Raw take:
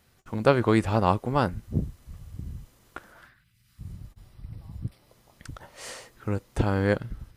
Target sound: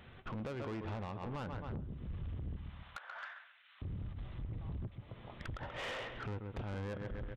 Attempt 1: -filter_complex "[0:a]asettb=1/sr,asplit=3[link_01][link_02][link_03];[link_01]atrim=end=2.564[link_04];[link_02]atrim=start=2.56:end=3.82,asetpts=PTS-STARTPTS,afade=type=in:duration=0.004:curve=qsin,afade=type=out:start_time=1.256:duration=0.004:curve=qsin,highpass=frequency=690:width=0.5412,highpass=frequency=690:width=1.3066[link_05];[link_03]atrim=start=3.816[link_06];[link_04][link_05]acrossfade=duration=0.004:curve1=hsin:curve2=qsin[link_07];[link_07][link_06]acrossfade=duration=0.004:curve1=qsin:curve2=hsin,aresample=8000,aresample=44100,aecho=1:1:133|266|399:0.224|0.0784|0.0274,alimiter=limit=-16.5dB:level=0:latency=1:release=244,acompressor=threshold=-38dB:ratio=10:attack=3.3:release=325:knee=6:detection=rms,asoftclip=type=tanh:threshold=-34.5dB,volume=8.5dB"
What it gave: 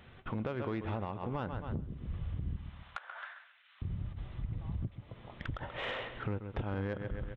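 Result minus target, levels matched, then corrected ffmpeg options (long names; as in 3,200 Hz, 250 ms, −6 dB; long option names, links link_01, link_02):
soft clipping: distortion −13 dB
-filter_complex "[0:a]asettb=1/sr,asplit=3[link_01][link_02][link_03];[link_01]atrim=end=2.564[link_04];[link_02]atrim=start=2.56:end=3.82,asetpts=PTS-STARTPTS,afade=type=in:duration=0.004:curve=qsin,afade=type=out:start_time=1.256:duration=0.004:curve=qsin,highpass=frequency=690:width=0.5412,highpass=frequency=690:width=1.3066[link_05];[link_03]atrim=start=3.816[link_06];[link_04][link_05]acrossfade=duration=0.004:curve1=hsin:curve2=qsin[link_07];[link_07][link_06]acrossfade=duration=0.004:curve1=qsin:curve2=hsin,aresample=8000,aresample=44100,aecho=1:1:133|266|399:0.224|0.0784|0.0274,alimiter=limit=-16.5dB:level=0:latency=1:release=244,acompressor=threshold=-38dB:ratio=10:attack=3.3:release=325:knee=6:detection=rms,asoftclip=type=tanh:threshold=-45.5dB,volume=8.5dB"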